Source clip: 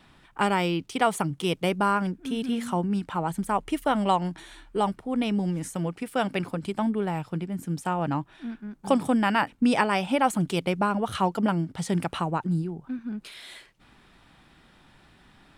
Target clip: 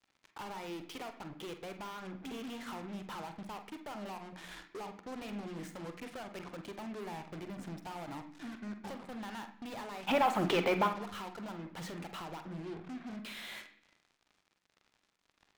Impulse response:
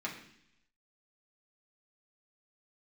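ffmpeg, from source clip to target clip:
-filter_complex "[0:a]lowpass=5900,bass=frequency=250:gain=-10,treble=frequency=4000:gain=-8,bandreject=frequency=60:width_type=h:width=6,bandreject=frequency=120:width_type=h:width=6,bandreject=frequency=180:width_type=h:width=6,bandreject=frequency=240:width_type=h:width=6,acompressor=threshold=-37dB:ratio=10,asoftclip=type=tanh:threshold=-39.5dB,asplit=3[link_01][link_02][link_03];[link_01]afade=type=out:start_time=10.07:duration=0.02[link_04];[link_02]asplit=2[link_05][link_06];[link_06]highpass=frequency=720:poles=1,volume=30dB,asoftclip=type=tanh:threshold=-18dB[link_07];[link_05][link_07]amix=inputs=2:normalize=0,lowpass=frequency=2300:poles=1,volume=-6dB,afade=type=in:start_time=10.07:duration=0.02,afade=type=out:start_time=10.86:duration=0.02[link_08];[link_03]afade=type=in:start_time=10.86:duration=0.02[link_09];[link_04][link_08][link_09]amix=inputs=3:normalize=0,acrusher=bits=7:mix=0:aa=0.5,asplit=2[link_10][link_11];[1:a]atrim=start_sample=2205,adelay=44[link_12];[link_11][link_12]afir=irnorm=-1:irlink=0,volume=-9.5dB[link_13];[link_10][link_13]amix=inputs=2:normalize=0,volume=1dB"

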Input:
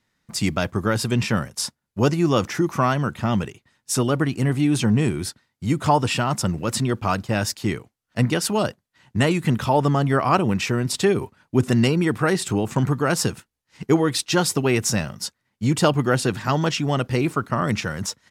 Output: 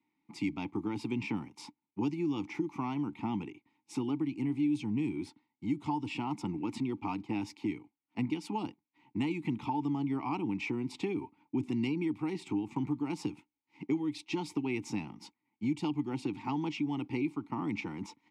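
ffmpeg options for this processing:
ffmpeg -i in.wav -filter_complex "[0:a]asplit=3[link_01][link_02][link_03];[link_01]bandpass=frequency=300:width_type=q:width=8,volume=0dB[link_04];[link_02]bandpass=frequency=870:width_type=q:width=8,volume=-6dB[link_05];[link_03]bandpass=frequency=2240:width_type=q:width=8,volume=-9dB[link_06];[link_04][link_05][link_06]amix=inputs=3:normalize=0,acrossover=split=150|3000[link_07][link_08][link_09];[link_08]acompressor=threshold=-38dB:ratio=6[link_10];[link_07][link_10][link_09]amix=inputs=3:normalize=0,asettb=1/sr,asplit=3[link_11][link_12][link_13];[link_11]atrim=end=5.274[link_14];[link_12]atrim=start=5.27:end=6.12,asetpts=PTS-STARTPTS,afade=type=in:duration=0.004:curve=qsin,afade=type=out:start_time=0.846:duration=0.004:curve=qsin,bandreject=frequency=2400:width=13[link_15];[link_13]atrim=start=6.116[link_16];[link_14][link_15]acrossfade=duration=0.004:curve1=hsin:curve2=qsin[link_17];[link_17][link_16]acrossfade=duration=0.004:curve1=qsin:curve2=hsin,volume=5.5dB" out.wav

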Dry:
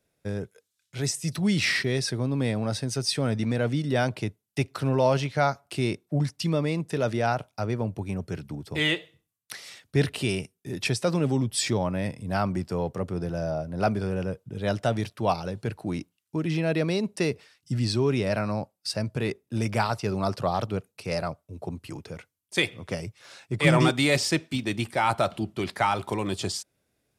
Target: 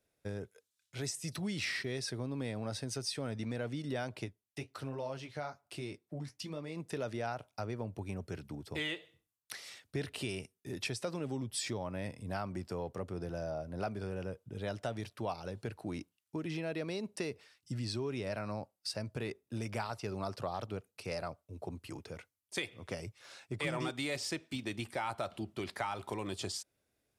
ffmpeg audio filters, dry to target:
ffmpeg -i in.wav -filter_complex "[0:a]equalizer=frequency=160:width_type=o:width=0.88:gain=-5,acompressor=threshold=-30dB:ratio=3,asplit=3[link_01][link_02][link_03];[link_01]afade=type=out:start_time=4.25:duration=0.02[link_04];[link_02]flanger=delay=5.2:depth=8.4:regen=-48:speed=1.2:shape=triangular,afade=type=in:start_time=4.25:duration=0.02,afade=type=out:start_time=6.75:duration=0.02[link_05];[link_03]afade=type=in:start_time=6.75:duration=0.02[link_06];[link_04][link_05][link_06]amix=inputs=3:normalize=0,volume=-5.5dB" out.wav

